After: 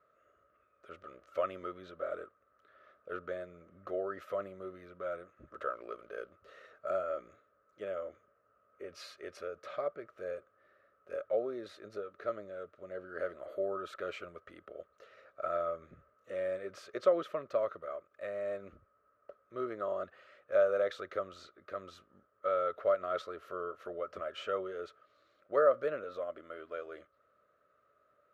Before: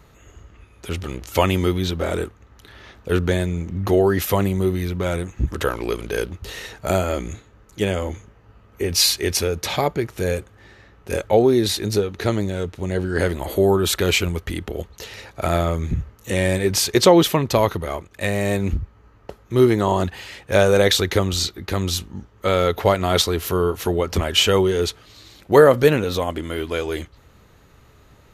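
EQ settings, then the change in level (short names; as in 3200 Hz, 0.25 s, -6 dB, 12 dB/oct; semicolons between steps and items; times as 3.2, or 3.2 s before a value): double band-pass 870 Hz, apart 1.1 oct; -8.0 dB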